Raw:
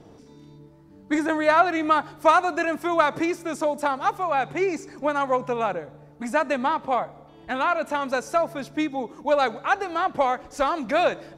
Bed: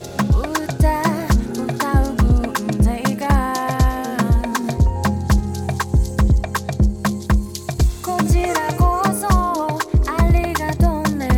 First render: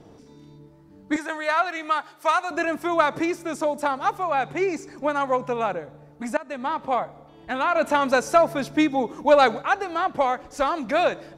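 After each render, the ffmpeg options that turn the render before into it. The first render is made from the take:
-filter_complex "[0:a]asettb=1/sr,asplit=3[s0][s1][s2];[s0]atrim=end=1.164[s3];[s1]atrim=start=1.16:end=2.51,asetpts=PTS-STARTPTS,afade=t=in:d=0.004:c=qsin,afade=t=out:st=1.346:d=0.004:c=qsin,highpass=f=1200:p=1[s4];[s2]atrim=start=2.506[s5];[s3][s4]acrossfade=d=0.004:c1=hsin:c2=qsin[s6];[s6][s5]acrossfade=d=0.004:c1=qsin:c2=hsin,asettb=1/sr,asplit=3[s7][s8][s9];[s7]atrim=end=7.754[s10];[s8]atrim=start=7.75:end=9.62,asetpts=PTS-STARTPTS,afade=t=in:d=0.004:c=qsin,afade=t=out:st=1.866:d=0.004:c=qsin,acontrast=38[s11];[s9]atrim=start=9.616[s12];[s10][s11]acrossfade=d=0.004:c1=hsin:c2=qsin[s13];[s13][s12]acrossfade=d=0.004:c1=qsin:c2=hsin,asplit=2[s14][s15];[s14]atrim=end=6.37,asetpts=PTS-STARTPTS,afade=t=out:st=6.366:d=0.004:c=hsin:silence=0.1[s16];[s15]atrim=start=6.37,asetpts=PTS-STARTPTS,afade=t=in:d=0.49:silence=0.1[s17];[s16][s17]concat=n=2:v=0:a=1"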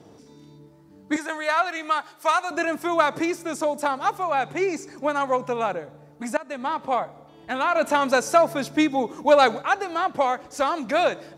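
-af "highpass=80,bass=f=250:g=-1,treble=f=4000:g=4"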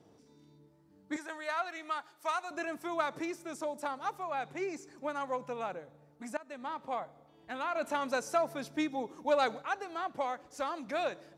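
-af "volume=0.237"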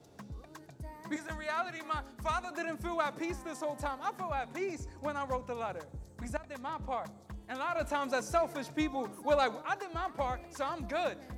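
-filter_complex "[1:a]volume=0.0316[s0];[0:a][s0]amix=inputs=2:normalize=0"

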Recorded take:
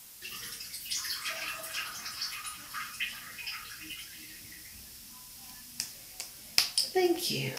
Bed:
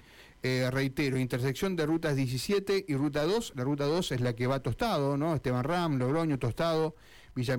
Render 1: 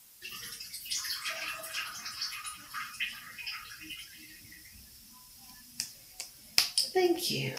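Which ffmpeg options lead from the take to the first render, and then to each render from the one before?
-af "afftdn=nr=7:nf=-49"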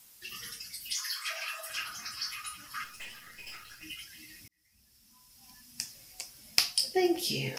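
-filter_complex "[0:a]asettb=1/sr,asplit=3[s0][s1][s2];[s0]atrim=end=0.934[s3];[s1]atrim=start=0.93:end=1.7,asetpts=PTS-STARTPTS,afade=t=in:d=0.004:c=qsin,afade=t=out:st=0.766:d=0.004:c=qsin,highpass=f=530:w=0.5412,highpass=f=530:w=1.3066[s4];[s2]atrim=start=1.696[s5];[s3][s4]acrossfade=d=0.004:c1=hsin:c2=qsin[s6];[s6][s5]acrossfade=d=0.004:c1=qsin:c2=hsin,asettb=1/sr,asplit=3[s7][s8][s9];[s7]atrim=end=2.844[s10];[s8]atrim=start=2.84:end=3.83,asetpts=PTS-STARTPTS,afade=t=in:d=0.004:c=qsin,afade=t=out:st=0.986:d=0.004:c=qsin,aeval=exprs='(tanh(112*val(0)+0.7)-tanh(0.7))/112':c=same[s11];[s9]atrim=start=3.826[s12];[s10][s11]acrossfade=d=0.004:c1=hsin:c2=qsin[s13];[s13][s12]acrossfade=d=0.004:c1=qsin:c2=hsin,asplit=2[s14][s15];[s14]atrim=end=4.48,asetpts=PTS-STARTPTS,afade=t=out:st=4.476:d=0.004:c=hsin[s16];[s15]atrim=start=4.48,asetpts=PTS-STARTPTS,afade=t=in:d=1.5[s17];[s16][s17]concat=n=2:v=0:a=1"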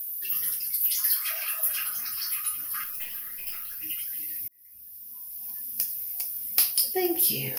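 -af "aexciter=amount=12.3:drive=8.5:freq=11000,asoftclip=type=tanh:threshold=0.251"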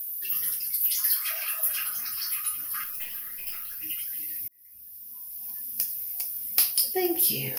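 -af anull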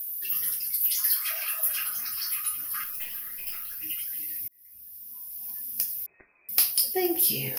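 -filter_complex "[0:a]asettb=1/sr,asplit=3[s0][s1][s2];[s0]atrim=end=6.064[s3];[s1]atrim=start=6.06:end=6.49,asetpts=PTS-STARTPTS,afade=t=in:d=0.004:c=qsin,afade=t=out:st=0.426:d=0.004:c=qsin,lowpass=f=2200:t=q:w=0.5098,lowpass=f=2200:t=q:w=0.6013,lowpass=f=2200:t=q:w=0.9,lowpass=f=2200:t=q:w=2.563,afreqshift=-2600[s4];[s2]atrim=start=6.486[s5];[s3][s4]acrossfade=d=0.004:c1=hsin:c2=qsin[s6];[s6][s5]acrossfade=d=0.004:c1=qsin:c2=hsin"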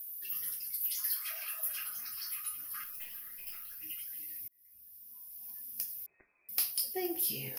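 -af "volume=0.335"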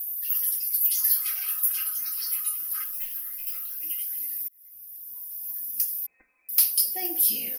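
-af "highshelf=f=4900:g=10,aecho=1:1:3.9:0.9"

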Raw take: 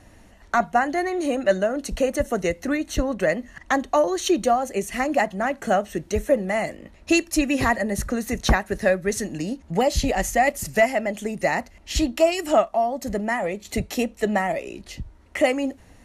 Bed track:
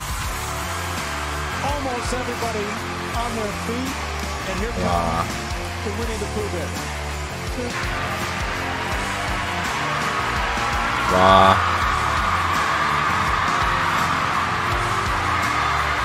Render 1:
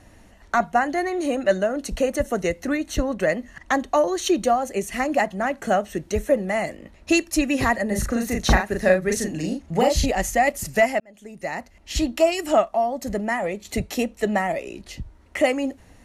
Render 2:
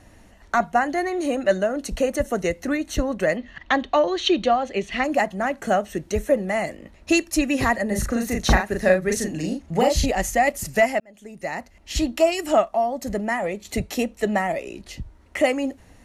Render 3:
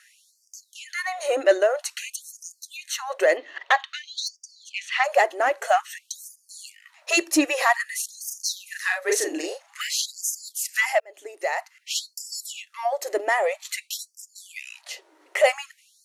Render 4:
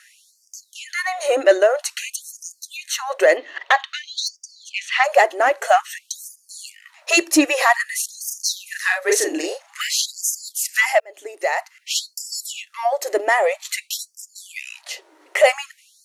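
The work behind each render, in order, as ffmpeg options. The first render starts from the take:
-filter_complex "[0:a]asettb=1/sr,asplit=3[s0][s1][s2];[s0]atrim=end=7.874[s3];[s1]atrim=start=7.87:end=10.06,asetpts=PTS-STARTPTS,afade=t=in:d=0.004:c=qsin,afade=t=out:st=2.186:d=0.004:c=qsin,asplit=2[s4][s5];[s5]adelay=38,volume=0.708[s6];[s4][s6]amix=inputs=2:normalize=0,atrim=end_sample=96579[s7];[s2]atrim=start=10.056[s8];[s3][s7]acrossfade=d=0.004:c1=hsin:c2=qsin[s9];[s9][s8]acrossfade=d=0.004:c1=qsin:c2=hsin,asplit=2[s10][s11];[s10]atrim=end=11,asetpts=PTS-STARTPTS,afade=t=out:st=10.996:d=0.004:c=hsin[s12];[s11]atrim=start=11,asetpts=PTS-STARTPTS,afade=t=in:d=1.12[s13];[s12][s13]concat=n=2:v=0:a=1"
-filter_complex "[0:a]asettb=1/sr,asplit=3[s0][s1][s2];[s0]atrim=end=3.374[s3];[s1]atrim=start=3.37:end=5.04,asetpts=PTS-STARTPTS,afade=t=in:d=0.004:c=qsin,afade=t=out:st=1.666:d=0.004:c=qsin,lowpass=f=3500:t=q:w=2.5[s4];[s2]atrim=start=5.036[s5];[s3][s4]acrossfade=d=0.004:c1=hsin:c2=qsin[s6];[s6][s5]acrossfade=d=0.004:c1=qsin:c2=hsin"
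-filter_complex "[0:a]asplit=2[s0][s1];[s1]asoftclip=type=tanh:threshold=0.106,volume=0.596[s2];[s0][s2]amix=inputs=2:normalize=0,afftfilt=real='re*gte(b*sr/1024,280*pow(4700/280,0.5+0.5*sin(2*PI*0.51*pts/sr)))':imag='im*gte(b*sr/1024,280*pow(4700/280,0.5+0.5*sin(2*PI*0.51*pts/sr)))':win_size=1024:overlap=0.75"
-af "volume=1.78,alimiter=limit=0.708:level=0:latency=1"

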